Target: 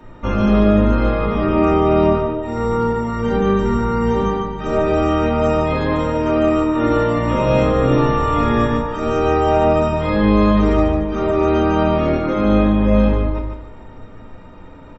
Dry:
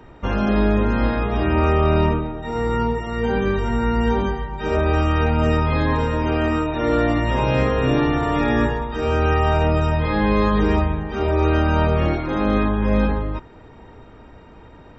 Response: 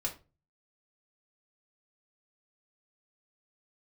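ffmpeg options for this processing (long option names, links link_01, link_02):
-filter_complex "[0:a]aecho=1:1:148|296|444:0.473|0.118|0.0296[link_01];[1:a]atrim=start_sample=2205[link_02];[link_01][link_02]afir=irnorm=-1:irlink=0"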